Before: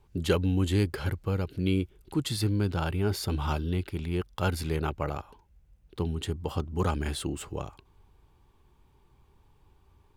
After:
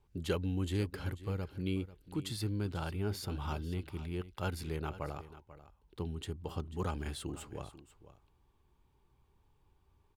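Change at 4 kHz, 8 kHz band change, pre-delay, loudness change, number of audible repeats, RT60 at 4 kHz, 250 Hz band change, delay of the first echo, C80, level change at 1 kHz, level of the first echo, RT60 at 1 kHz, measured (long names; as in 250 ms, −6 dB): −8.5 dB, −8.5 dB, no reverb audible, −8.5 dB, 1, no reverb audible, −8.5 dB, 491 ms, no reverb audible, −8.5 dB, −15.5 dB, no reverb audible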